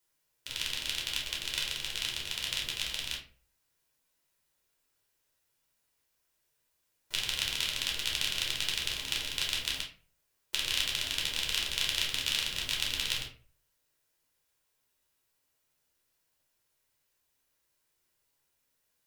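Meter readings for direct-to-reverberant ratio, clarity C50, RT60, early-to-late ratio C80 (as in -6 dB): -2.5 dB, 7.0 dB, 0.40 s, 13.0 dB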